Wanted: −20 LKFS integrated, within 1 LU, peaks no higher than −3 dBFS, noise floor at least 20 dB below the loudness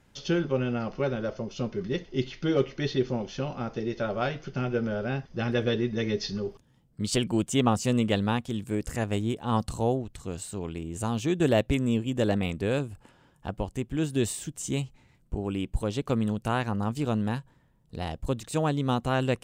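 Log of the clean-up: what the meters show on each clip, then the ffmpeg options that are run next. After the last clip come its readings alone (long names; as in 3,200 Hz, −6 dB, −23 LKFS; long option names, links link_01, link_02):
integrated loudness −29.0 LKFS; sample peak −9.5 dBFS; target loudness −20.0 LKFS
→ -af "volume=9dB,alimiter=limit=-3dB:level=0:latency=1"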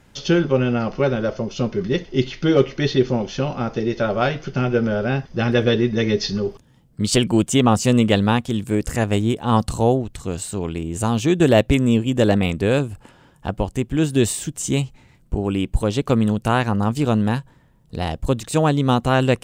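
integrated loudness −20.5 LKFS; sample peak −3.0 dBFS; background noise floor −54 dBFS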